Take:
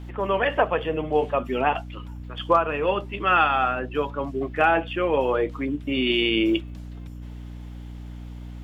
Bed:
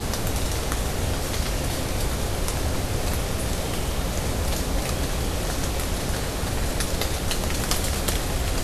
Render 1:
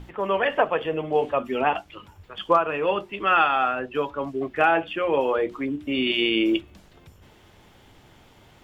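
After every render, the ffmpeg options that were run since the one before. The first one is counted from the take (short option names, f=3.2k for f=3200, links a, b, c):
-af "bandreject=f=60:t=h:w=6,bandreject=f=120:t=h:w=6,bandreject=f=180:t=h:w=6,bandreject=f=240:t=h:w=6,bandreject=f=300:t=h:w=6,bandreject=f=360:t=h:w=6"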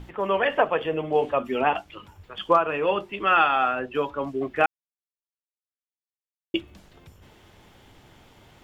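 -filter_complex "[0:a]asplit=3[a][b][c];[a]atrim=end=4.66,asetpts=PTS-STARTPTS,afade=t=out:st=4.656:d=0.004:c=hsin[d];[b]atrim=start=4.66:end=6.54,asetpts=PTS-STARTPTS,volume=0[e];[c]atrim=start=6.54,asetpts=PTS-STARTPTS,afade=t=in:d=0.004:c=hsin[f];[d][e][f]concat=n=3:v=0:a=1"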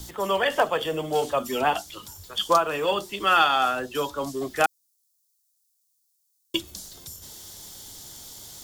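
-filter_complex "[0:a]acrossover=split=230|480|1800[a][b][c][d];[b]asoftclip=type=tanh:threshold=-31dB[e];[a][e][c][d]amix=inputs=4:normalize=0,aexciter=amount=10.6:drive=7.4:freq=3.9k"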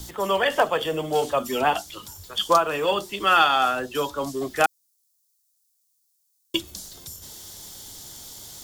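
-af "volume=1.5dB"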